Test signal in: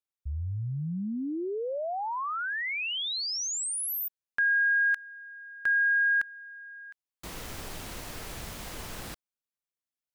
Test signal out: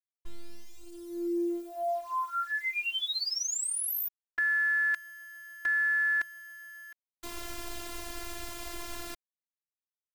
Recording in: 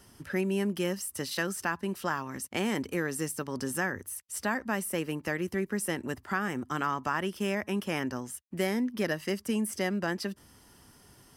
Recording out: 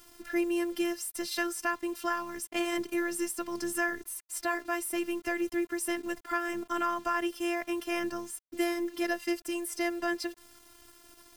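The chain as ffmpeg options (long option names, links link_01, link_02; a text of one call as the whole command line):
ffmpeg -i in.wav -af "acrusher=bits=8:mix=0:aa=0.000001,afftfilt=real='hypot(re,im)*cos(PI*b)':imag='0':win_size=512:overlap=0.75,volume=3.5dB" out.wav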